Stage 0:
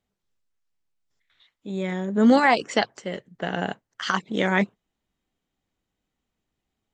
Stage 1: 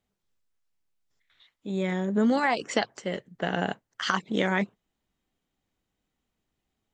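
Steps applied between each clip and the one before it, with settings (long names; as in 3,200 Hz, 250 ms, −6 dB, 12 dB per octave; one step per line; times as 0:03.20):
downward compressor 6 to 1, threshold −20 dBFS, peak gain reduction 8 dB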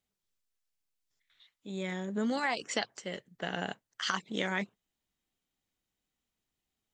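high-shelf EQ 2,100 Hz +9 dB
level −9 dB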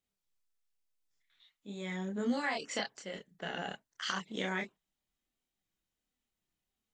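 multi-voice chorus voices 6, 0.32 Hz, delay 28 ms, depth 4 ms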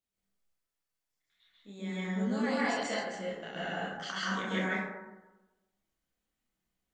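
dense smooth reverb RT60 1.1 s, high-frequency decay 0.35×, pre-delay 120 ms, DRR −8 dB
level −5 dB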